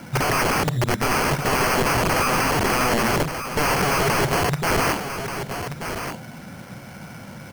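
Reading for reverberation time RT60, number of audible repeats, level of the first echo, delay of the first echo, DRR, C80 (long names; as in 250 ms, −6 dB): no reverb audible, 1, −8.5 dB, 1,182 ms, no reverb audible, no reverb audible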